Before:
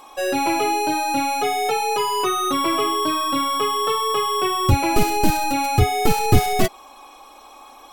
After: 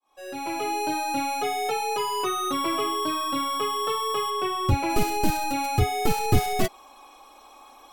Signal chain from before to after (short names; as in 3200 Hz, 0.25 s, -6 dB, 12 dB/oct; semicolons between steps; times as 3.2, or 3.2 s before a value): opening faded in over 0.84 s; 4.3–4.9 high shelf 5600 Hz -7 dB; gain -5.5 dB